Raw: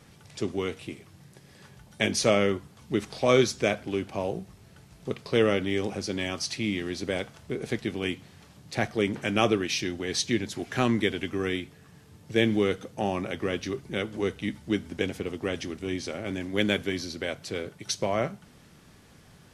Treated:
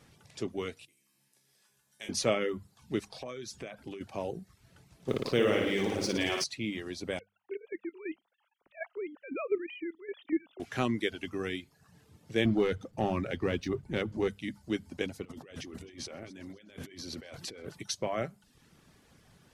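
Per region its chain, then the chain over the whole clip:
0.85–2.09 RIAA curve recording + resonator 68 Hz, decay 1.7 s, mix 90%
3.08–4.01 compressor 12:1, threshold -31 dBFS + mismatched tape noise reduction decoder only
5.08–6.44 G.711 law mismatch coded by A + flutter echo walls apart 9.7 m, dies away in 1 s + fast leveller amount 50%
7.19–10.6 sine-wave speech + level quantiser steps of 10 dB
12.45–14.28 LPF 3400 Hz 6 dB/oct + low shelf 120 Hz +10 dB + sample leveller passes 1
15.25–17.83 negative-ratio compressor -40 dBFS + multi-head echo 0.13 s, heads first and second, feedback 40%, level -19 dB
whole clip: notches 50/100/150/200 Hz; reverb removal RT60 0.57 s; gain -5 dB

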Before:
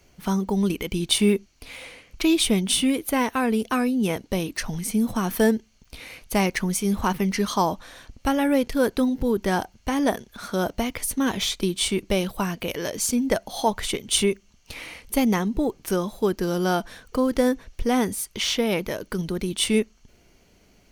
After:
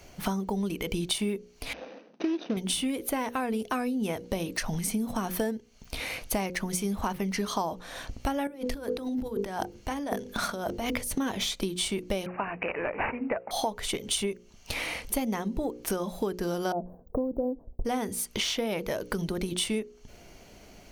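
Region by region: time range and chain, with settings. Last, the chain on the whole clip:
1.73–2.57 median filter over 41 samples + brick-wall FIR band-pass 170–6400 Hz
8.47–11.18 transient shaper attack 0 dB, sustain -9 dB + notches 50/100/150/200/250/300/350/400/450/500 Hz + negative-ratio compressor -34 dBFS
12.26–13.51 HPF 600 Hz 6 dB/oct + careless resampling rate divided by 8×, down none, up filtered
16.72–17.85 inverse Chebyshev band-stop 2100–8900 Hz, stop band 60 dB + expander -45 dBFS
whole clip: bell 680 Hz +4.5 dB 0.82 oct; notches 60/120/180/240/300/360/420/480/540 Hz; compressor 6:1, threshold -34 dBFS; gain +6 dB

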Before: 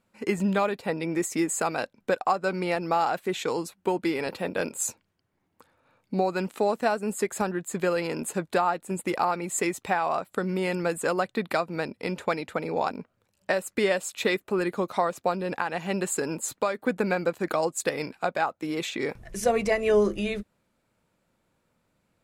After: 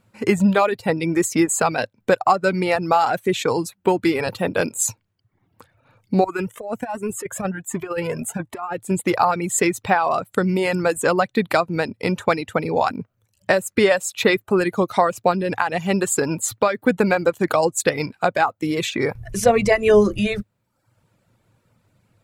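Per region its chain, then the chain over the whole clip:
6.24–8.78 bell 4300 Hz -12.5 dB 0.54 oct + negative-ratio compressor -27 dBFS, ratio -0.5 + cascading flanger rising 1.3 Hz
whole clip: reverb removal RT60 0.72 s; bell 110 Hz +14 dB 0.62 oct; gain +8 dB

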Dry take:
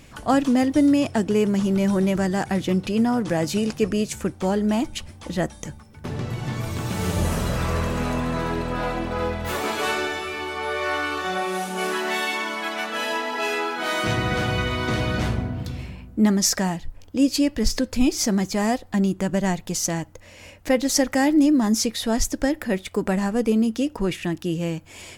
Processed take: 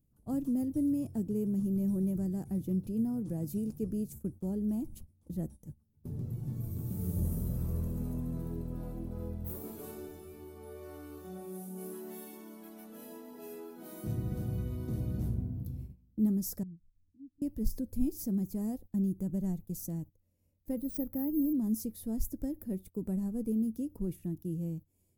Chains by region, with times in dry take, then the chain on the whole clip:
16.63–17.42 inverse Chebyshev low-pass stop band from 650 Hz + compressor 2.5:1, threshold -40 dBFS
20.77–21.53 bell 13000 Hz -13.5 dB 2.1 oct + careless resampling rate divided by 3×, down filtered, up hold
whole clip: gate -33 dBFS, range -16 dB; EQ curve 170 Hz 0 dB, 410 Hz -8 dB, 650 Hz -17 dB, 1800 Hz -29 dB, 3000 Hz -28 dB, 7300 Hz -15 dB, 14000 Hz +7 dB; gain -8 dB

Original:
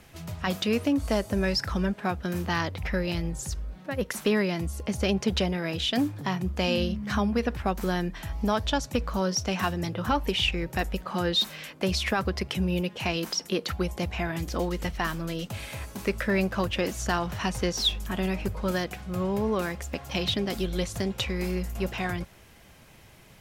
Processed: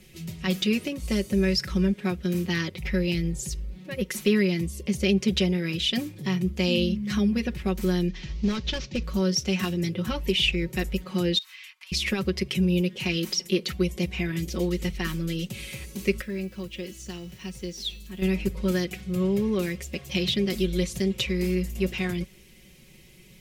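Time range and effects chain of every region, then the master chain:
8.08–9.03 CVSD 32 kbps + hard clip -18.5 dBFS
11.38–11.92 steep high-pass 980 Hz 48 dB/oct + high shelf 3500 Hz -10.5 dB + compressor 16:1, threshold -40 dBFS
16.21–18.22 resonator 330 Hz, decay 0.87 s, mix 70% + requantised 10-bit, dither none
whole clip: band shelf 1000 Hz -13.5 dB; comb 5.4 ms, depth 75%; dynamic EQ 1400 Hz, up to +5 dB, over -46 dBFS, Q 1.4

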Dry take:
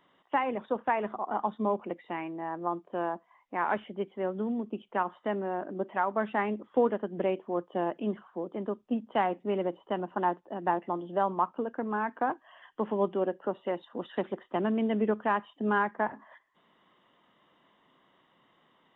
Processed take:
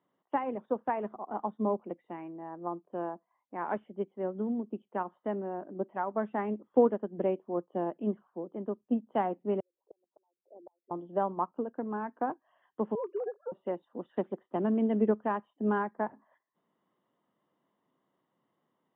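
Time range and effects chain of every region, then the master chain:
9.6–10.91 formant sharpening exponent 3 + ladder high-pass 180 Hz, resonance 35% + flipped gate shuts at -30 dBFS, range -34 dB
12.95–13.52 sine-wave speech + compressor, threshold -28 dBFS
whole clip: HPF 97 Hz; tilt shelf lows +8 dB, about 1400 Hz; upward expander 1.5:1, over -40 dBFS; gain -3.5 dB

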